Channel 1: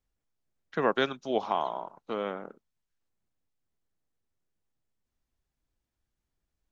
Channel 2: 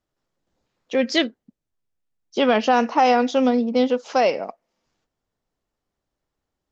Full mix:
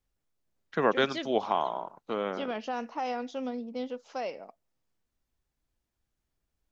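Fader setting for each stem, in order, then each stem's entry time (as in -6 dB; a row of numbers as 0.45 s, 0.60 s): +1.0 dB, -16.5 dB; 0.00 s, 0.00 s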